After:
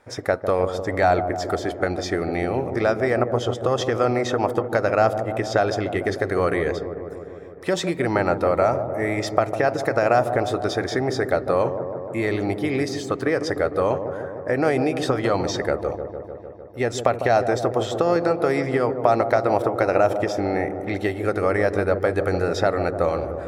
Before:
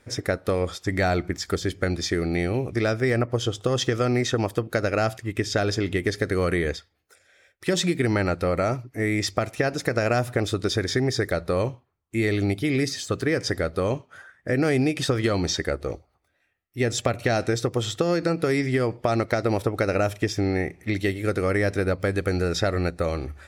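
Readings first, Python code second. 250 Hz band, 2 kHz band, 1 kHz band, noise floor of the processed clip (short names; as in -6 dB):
0.0 dB, +1.0 dB, +7.5 dB, -36 dBFS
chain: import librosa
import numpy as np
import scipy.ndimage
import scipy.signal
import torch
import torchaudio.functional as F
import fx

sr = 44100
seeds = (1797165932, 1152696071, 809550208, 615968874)

p1 = fx.peak_eq(x, sr, hz=840.0, db=14.0, octaves=1.8)
p2 = p1 + fx.echo_wet_lowpass(p1, sr, ms=151, feedback_pct=74, hz=810.0, wet_db=-7.5, dry=0)
y = F.gain(torch.from_numpy(p2), -5.0).numpy()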